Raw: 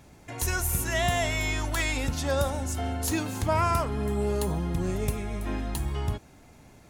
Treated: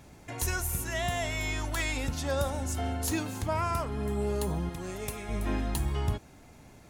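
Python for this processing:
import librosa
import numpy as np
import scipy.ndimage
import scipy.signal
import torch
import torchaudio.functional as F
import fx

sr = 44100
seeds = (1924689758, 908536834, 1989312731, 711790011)

y = fx.rider(x, sr, range_db=4, speed_s=0.5)
y = fx.low_shelf(y, sr, hz=360.0, db=-11.5, at=(4.69, 5.29))
y = y * 10.0 ** (-3.0 / 20.0)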